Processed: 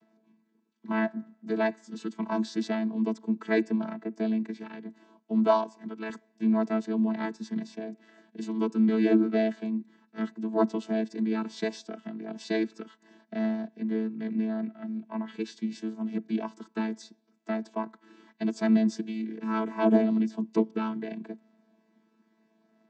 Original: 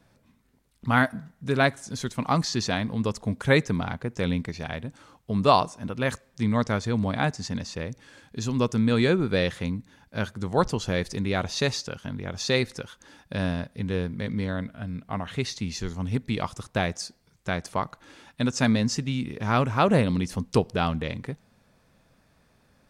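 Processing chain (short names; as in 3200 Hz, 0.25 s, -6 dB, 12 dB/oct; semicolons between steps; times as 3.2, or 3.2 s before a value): chord vocoder bare fifth, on A3; 5.47–6.1 low shelf 260 Hz -8.5 dB; gain -1.5 dB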